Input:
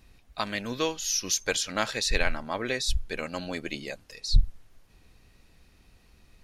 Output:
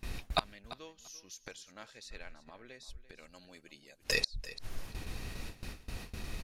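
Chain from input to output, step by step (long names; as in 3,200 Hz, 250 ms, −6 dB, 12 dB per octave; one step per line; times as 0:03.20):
noise gate with hold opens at −47 dBFS
0:03.16–0:04.04: high-shelf EQ 4,100 Hz +11.5 dB
gate with flip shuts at −30 dBFS, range −39 dB
on a send: repeating echo 341 ms, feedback 16%, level −16 dB
on the sum: level +16.5 dB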